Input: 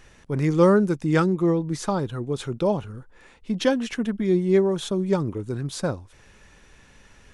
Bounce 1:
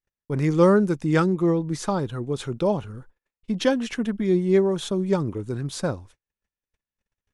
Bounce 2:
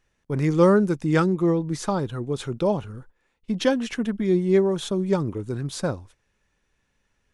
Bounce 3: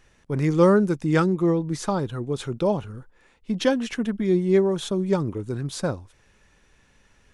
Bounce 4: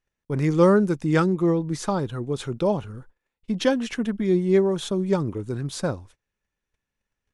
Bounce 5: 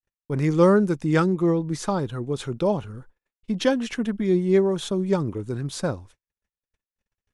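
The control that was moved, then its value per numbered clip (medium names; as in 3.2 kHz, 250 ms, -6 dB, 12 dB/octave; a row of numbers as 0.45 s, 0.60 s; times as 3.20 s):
gate, range: -45 dB, -19 dB, -7 dB, -32 dB, -59 dB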